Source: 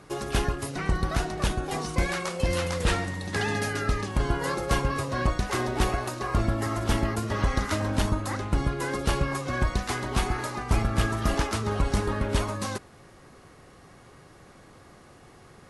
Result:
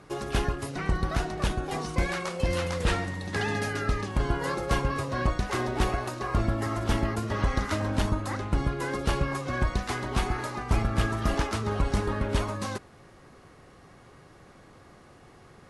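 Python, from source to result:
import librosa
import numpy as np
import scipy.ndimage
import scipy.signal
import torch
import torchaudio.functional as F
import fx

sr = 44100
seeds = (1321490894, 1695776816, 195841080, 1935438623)

y = fx.high_shelf(x, sr, hz=6400.0, db=-6.0)
y = F.gain(torch.from_numpy(y), -1.0).numpy()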